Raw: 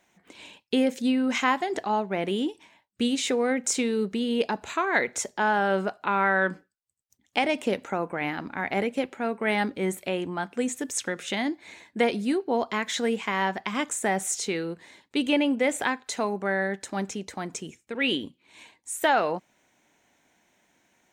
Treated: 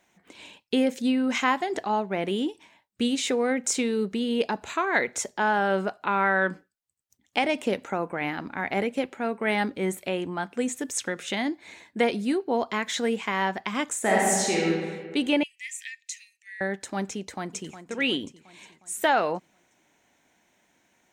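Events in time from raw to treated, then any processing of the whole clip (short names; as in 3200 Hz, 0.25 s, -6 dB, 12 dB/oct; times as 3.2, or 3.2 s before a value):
14–14.69 reverb throw, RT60 1.7 s, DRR -4.5 dB
15.43–16.61 rippled Chebyshev high-pass 1800 Hz, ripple 9 dB
17.17–17.77 echo throw 0.36 s, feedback 55%, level -11.5 dB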